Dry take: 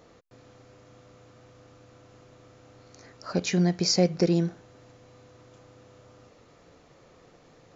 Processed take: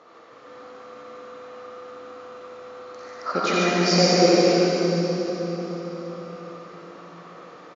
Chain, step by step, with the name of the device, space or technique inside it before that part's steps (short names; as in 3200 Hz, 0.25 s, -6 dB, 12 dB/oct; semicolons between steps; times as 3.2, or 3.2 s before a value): station announcement (BPF 310–4500 Hz; bell 1200 Hz +10 dB 0.51 oct; loudspeakers at several distances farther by 30 m -5 dB, 50 m -3 dB; reverb RT60 4.2 s, pre-delay 46 ms, DRR -4.5 dB); gain +3 dB